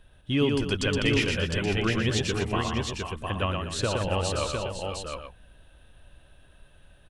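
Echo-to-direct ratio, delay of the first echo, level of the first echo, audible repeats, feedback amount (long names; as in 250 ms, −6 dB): 0.0 dB, 118 ms, −4.0 dB, 5, repeats not evenly spaced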